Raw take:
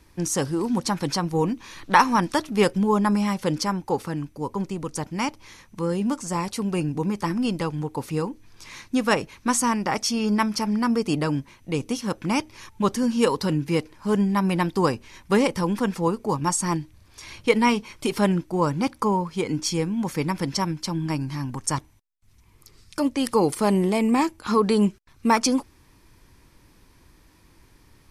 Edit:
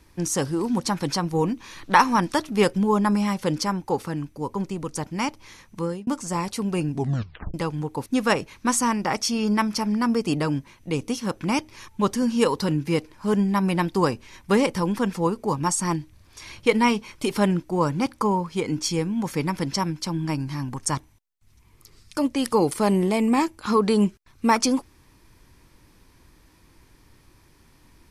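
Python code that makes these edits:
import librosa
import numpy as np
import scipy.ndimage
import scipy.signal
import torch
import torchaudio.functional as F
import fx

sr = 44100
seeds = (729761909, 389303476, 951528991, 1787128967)

y = fx.edit(x, sr, fx.fade_out_span(start_s=5.82, length_s=0.25),
    fx.tape_stop(start_s=6.93, length_s=0.61),
    fx.cut(start_s=8.06, length_s=0.81), tone=tone)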